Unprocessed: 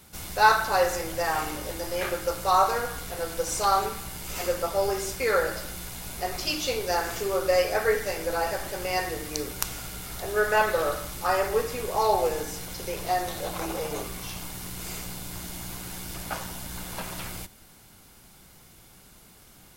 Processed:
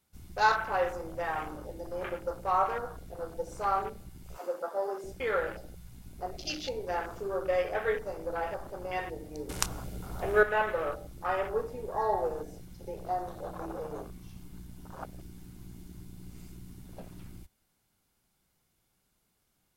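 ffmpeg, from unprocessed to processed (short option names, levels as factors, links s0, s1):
-filter_complex "[0:a]asettb=1/sr,asplit=3[s0][s1][s2];[s0]atrim=end=4.374[s3];[s1]atrim=start=4.37:end=5.04,asetpts=PTS-STARTPTS,afade=t=in:d=0.004:c=qsin,afade=t=out:st=0.666:d=0.004:c=qsin,highpass=340[s4];[s2]atrim=start=5.036[s5];[s3][s4]acrossfade=d=0.004:c1=hsin:c2=qsin[s6];[s6][s5]acrossfade=d=0.004:c1=qsin:c2=hsin,asplit=5[s7][s8][s9][s10][s11];[s7]atrim=end=9.492[s12];[s8]atrim=start=9.488:end=10.432,asetpts=PTS-STARTPTS,volume=2.37[s13];[s9]atrim=start=10.428:end=14.502[s14];[s10]atrim=start=14.498:end=16.862,asetpts=PTS-STARTPTS,areverse[s15];[s11]atrim=start=16.858[s16];[s12][s13]acrossfade=d=0.004:c1=hsin:c2=hsin[s17];[s17][s14]acrossfade=d=0.004:c1=hsin:c2=hsin[s18];[s18][s15]acrossfade=d=0.004:c1=hsin:c2=hsin[s19];[s19][s16]acrossfade=d=0.004:c1=hsin:c2=hsin,afwtdn=0.0251,volume=0.501"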